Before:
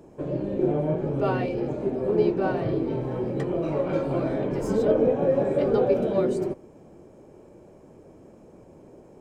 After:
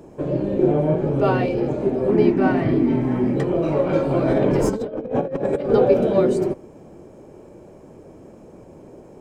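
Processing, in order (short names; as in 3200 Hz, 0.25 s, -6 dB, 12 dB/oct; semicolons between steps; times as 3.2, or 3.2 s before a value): 2.1–3.36 thirty-one-band EQ 250 Hz +11 dB, 500 Hz -10 dB, 2000 Hz +9 dB, 4000 Hz -5 dB; 4.28–5.7 negative-ratio compressor -27 dBFS, ratio -0.5; gain +6 dB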